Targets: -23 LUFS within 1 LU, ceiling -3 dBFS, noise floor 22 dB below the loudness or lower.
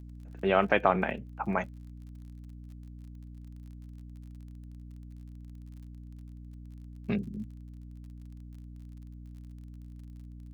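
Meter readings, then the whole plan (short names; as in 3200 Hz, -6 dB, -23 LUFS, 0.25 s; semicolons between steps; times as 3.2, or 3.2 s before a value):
ticks 37/s; hum 60 Hz; harmonics up to 300 Hz; hum level -43 dBFS; loudness -30.0 LUFS; peak -8.5 dBFS; loudness target -23.0 LUFS
-> de-click; notches 60/120/180/240/300 Hz; gain +7 dB; limiter -3 dBFS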